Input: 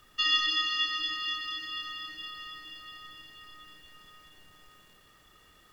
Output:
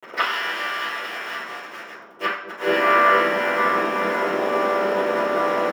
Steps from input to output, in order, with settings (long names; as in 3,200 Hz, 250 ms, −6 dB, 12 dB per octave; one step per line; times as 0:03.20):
channel vocoder with a chord as carrier major triad, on C3
low-pass that shuts in the quiet parts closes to 830 Hz, open at −24.5 dBFS
Butterworth high-pass 200 Hz 72 dB per octave
dynamic equaliser 1,600 Hz, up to +4 dB, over −45 dBFS, Q 1.5
in parallel at −1.5 dB: downward compressor 5 to 1, threshold −37 dBFS, peak gain reduction 15 dB
on the sum: leveller curve on the samples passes 1
reversed playback
upward compression, threshold −35 dBFS
reversed playback
gate with flip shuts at −26 dBFS, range −27 dB
pitch-shifted copies added −12 semitones −11 dB, +7 semitones −3 dB
bit-depth reduction 8 bits, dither none
delay with a low-pass on its return 228 ms, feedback 84%, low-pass 530 Hz, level −7 dB
convolution reverb RT60 0.60 s, pre-delay 3 ms, DRR −11.5 dB
level +6.5 dB